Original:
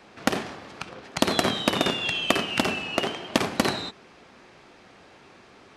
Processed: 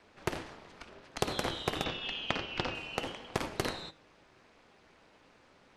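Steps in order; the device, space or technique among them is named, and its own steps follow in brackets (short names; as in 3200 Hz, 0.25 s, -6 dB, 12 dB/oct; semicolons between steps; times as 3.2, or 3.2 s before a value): alien voice (ring modulator 120 Hz; flange 0.87 Hz, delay 4.4 ms, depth 2.3 ms, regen +88%); 1.84–2.75 LPF 5500 Hz 24 dB/oct; gain -3 dB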